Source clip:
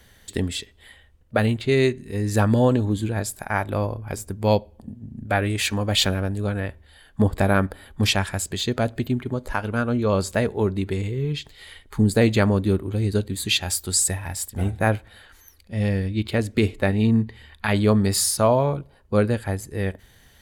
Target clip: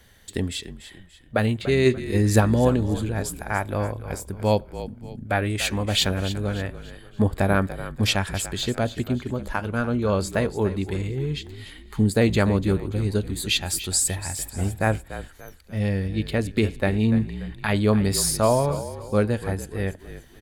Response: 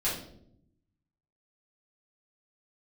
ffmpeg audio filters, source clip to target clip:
-filter_complex "[0:a]asplit=3[link_01][link_02][link_03];[link_01]afade=type=out:start_time=1.85:duration=0.02[link_04];[link_02]acontrast=54,afade=type=in:start_time=1.85:duration=0.02,afade=type=out:start_time=2.39:duration=0.02[link_05];[link_03]afade=type=in:start_time=2.39:duration=0.02[link_06];[link_04][link_05][link_06]amix=inputs=3:normalize=0,asplit=5[link_07][link_08][link_09][link_10][link_11];[link_08]adelay=290,afreqshift=-43,volume=-13dB[link_12];[link_09]adelay=580,afreqshift=-86,volume=-21.2dB[link_13];[link_10]adelay=870,afreqshift=-129,volume=-29.4dB[link_14];[link_11]adelay=1160,afreqshift=-172,volume=-37.5dB[link_15];[link_07][link_12][link_13][link_14][link_15]amix=inputs=5:normalize=0,volume=-1.5dB"

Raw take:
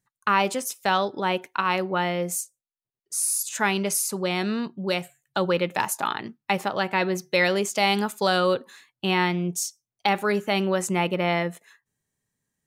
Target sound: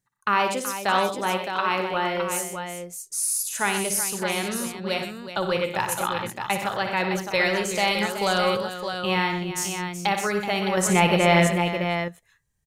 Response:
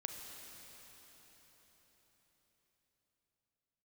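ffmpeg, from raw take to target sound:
-filter_complex "[0:a]asubboost=boost=10:cutoff=74,asettb=1/sr,asplit=3[link_01][link_02][link_03];[link_01]atrim=end=10.774[link_04];[link_02]atrim=start=10.77:end=11.47,asetpts=PTS-STARTPTS,afade=type=in:duration=0.004:curve=qsin,afade=type=out:start_time=0.696:duration=0.004:curve=qsin,acontrast=79[link_05];[link_03]atrim=start=11.466[link_06];[link_04][link_05]acrossfade=duration=0.004:curve1=hsin:curve2=qsin[link_07];[link_07][link_06]acrossfade=duration=0.004:curve1=qsin:curve2=hsin,aecho=1:1:59|93|124|376|613:0.355|0.237|0.299|0.282|0.447,volume=-1dB"

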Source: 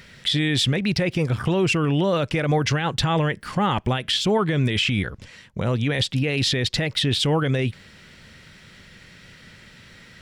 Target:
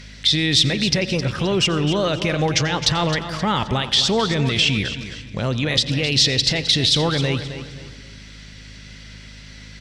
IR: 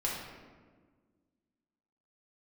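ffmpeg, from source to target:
-filter_complex "[0:a]highshelf=frequency=7200:gain=-11,aecho=1:1:274|548|822:0.266|0.0851|0.0272,aeval=exprs='val(0)+0.01*(sin(2*PI*50*n/s)+sin(2*PI*2*50*n/s)/2+sin(2*PI*3*50*n/s)/3+sin(2*PI*4*50*n/s)/4+sin(2*PI*5*50*n/s)/5)':channel_layout=same,equalizer=frequency=5400:width_type=o:width=1.6:gain=12.5,asplit=2[link_01][link_02];[link_02]asuperstop=centerf=2200:order=20:qfactor=7.7[link_03];[1:a]atrim=start_sample=2205,adelay=91[link_04];[link_03][link_04]afir=irnorm=-1:irlink=0,volume=-20.5dB[link_05];[link_01][link_05]amix=inputs=2:normalize=0,asetrate=45938,aresample=44100" -ar 48000 -c:a libopus -b:a 64k

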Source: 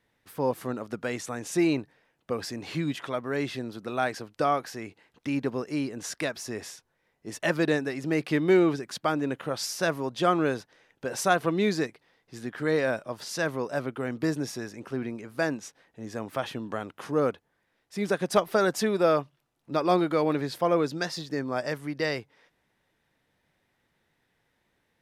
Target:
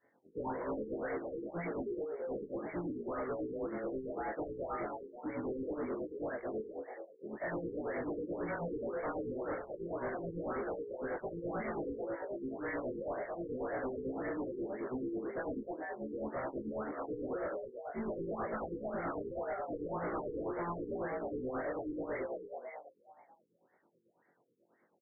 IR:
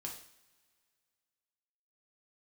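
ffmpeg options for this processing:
-filter_complex "[0:a]afftfilt=real='re':imag='-im':win_size=2048:overlap=0.75,highpass=250,equalizer=frequency=410:width=0.56:gain=4.5,asplit=2[link_01][link_02];[link_02]adelay=41,volume=-3dB[link_03];[link_01][link_03]amix=inputs=2:normalize=0,asplit=7[link_04][link_05][link_06][link_07][link_08][link_09][link_10];[link_05]adelay=215,afreqshift=59,volume=-9.5dB[link_11];[link_06]adelay=430,afreqshift=118,volume=-15.5dB[link_12];[link_07]adelay=645,afreqshift=177,volume=-21.5dB[link_13];[link_08]adelay=860,afreqshift=236,volume=-27.6dB[link_14];[link_09]adelay=1075,afreqshift=295,volume=-33.6dB[link_15];[link_10]adelay=1290,afreqshift=354,volume=-39.6dB[link_16];[link_04][link_11][link_12][link_13][link_14][link_15][link_16]amix=inputs=7:normalize=0,afftfilt=real='re*lt(hypot(re,im),0.355)':imag='im*lt(hypot(re,im),0.355)':win_size=1024:overlap=0.75,equalizer=frequency=5900:width=2.6:gain=2,volume=33dB,asoftclip=hard,volume=-33dB,acrossover=split=1700[link_17][link_18];[link_17]aeval=exprs='val(0)*(1-0.7/2+0.7/2*cos(2*PI*9.2*n/s))':channel_layout=same[link_19];[link_18]aeval=exprs='val(0)*(1-0.7/2-0.7/2*cos(2*PI*9.2*n/s))':channel_layout=same[link_20];[link_19][link_20]amix=inputs=2:normalize=0,asoftclip=type=tanh:threshold=-40dB,afftfilt=real='re*lt(b*sr/1024,490*pow(2300/490,0.5+0.5*sin(2*PI*1.9*pts/sr)))':imag='im*lt(b*sr/1024,490*pow(2300/490,0.5+0.5*sin(2*PI*1.9*pts/sr)))':win_size=1024:overlap=0.75,volume=6dB"

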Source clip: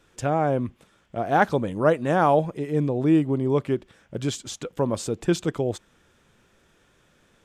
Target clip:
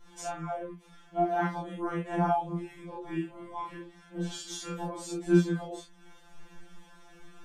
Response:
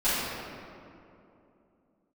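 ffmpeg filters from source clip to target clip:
-filter_complex "[0:a]acompressor=threshold=-44dB:ratio=2,flanger=delay=22.5:depth=2.3:speed=1.5,asettb=1/sr,asplit=3[link_01][link_02][link_03];[link_01]atrim=end=3.014[link_04];[link_02]atrim=start=3.01:end=4.77,asetpts=PTS-STARTPTS,afade=type=in:duration=0.004:curve=qsin,afade=type=out:start_time=1.756:duration=0.004:curve=qsin,asplit=2[link_05][link_06];[link_06]adelay=40,volume=-6.5dB[link_07];[link_05][link_07]amix=inputs=2:normalize=0,atrim=end_sample=77616[link_08];[link_03]atrim=start=4.766[link_09];[link_04][link_08]acrossfade=duration=0.004:curve1=hsin:curve2=qsin[link_10];[link_10][link_09]acrossfade=duration=0.004:curve1=qsin:curve2=hsin[link_11];[1:a]atrim=start_sample=2205,atrim=end_sample=3528[link_12];[link_11][link_12]afir=irnorm=-1:irlink=0,afftfilt=real='re*2.83*eq(mod(b,8),0)':imag='im*2.83*eq(mod(b,8),0)':win_size=2048:overlap=0.75"

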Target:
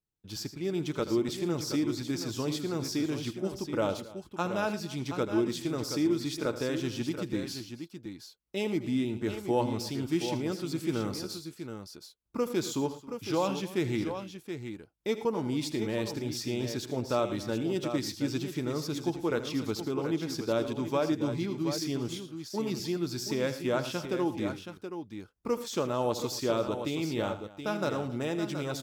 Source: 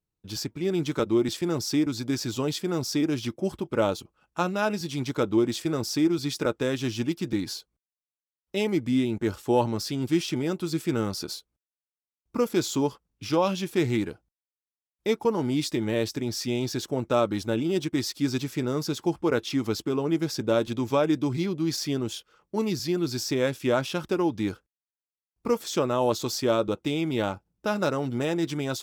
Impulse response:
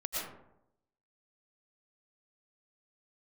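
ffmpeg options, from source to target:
-af "aecho=1:1:80|113|271|725:0.211|0.15|0.1|0.376,volume=-5.5dB"

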